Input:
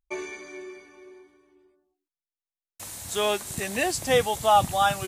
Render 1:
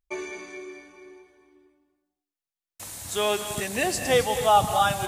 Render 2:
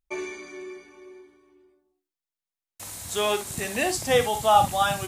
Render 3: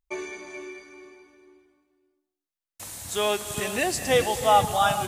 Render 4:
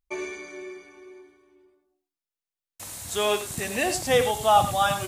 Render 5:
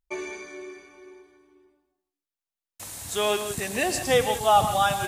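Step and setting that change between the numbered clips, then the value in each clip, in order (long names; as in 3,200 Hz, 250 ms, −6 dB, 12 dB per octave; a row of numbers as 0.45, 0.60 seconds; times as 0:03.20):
reverb whose tail is shaped and stops, gate: 300, 80, 460, 120, 200 milliseconds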